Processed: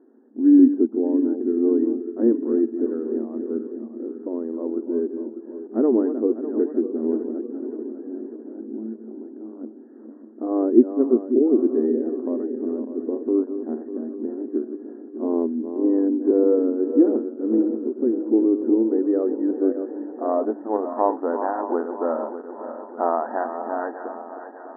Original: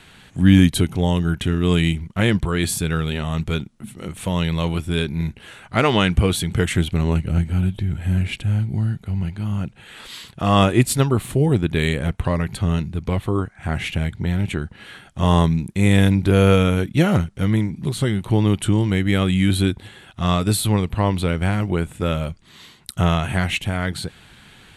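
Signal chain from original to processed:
feedback delay that plays each chunk backwards 299 ms, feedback 71%, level −9.5 dB
brick-wall band-pass 220–1,900 Hz
low-pass filter sweep 350 Hz → 850 Hz, 0:18.41–0:21.32
level −1.5 dB

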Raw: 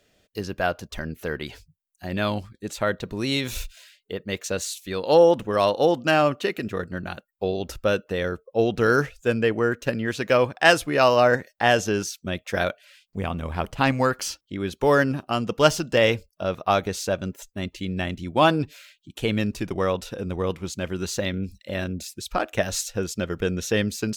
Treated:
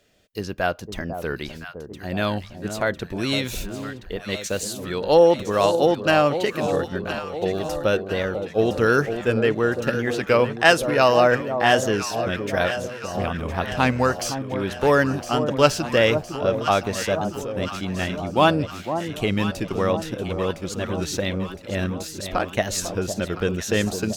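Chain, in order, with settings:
delay that swaps between a low-pass and a high-pass 506 ms, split 1,000 Hz, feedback 75%, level −8 dB
wow of a warped record 33 1/3 rpm, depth 100 cents
level +1 dB

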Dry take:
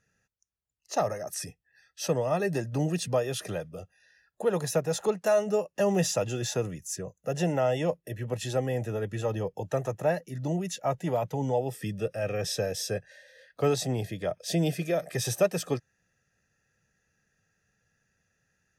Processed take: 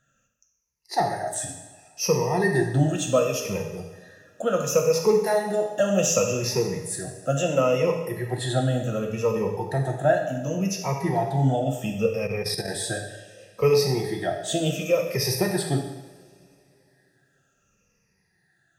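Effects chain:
rippled gain that drifts along the octave scale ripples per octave 0.84, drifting −0.69 Hz, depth 18 dB
coupled-rooms reverb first 0.89 s, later 3.4 s, from −22 dB, DRR 1.5 dB
0:12.27–0:12.68: output level in coarse steps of 9 dB

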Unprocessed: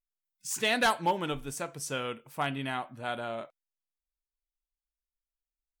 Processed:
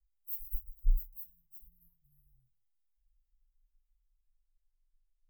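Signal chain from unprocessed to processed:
gliding playback speed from 167% → 52%
inverse Chebyshev band-stop filter 280–5,200 Hz, stop band 80 dB
gain into a clipping stage and back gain 36 dB
convolution reverb RT60 0.20 s, pre-delay 4 ms, DRR −6 dB
level +2.5 dB

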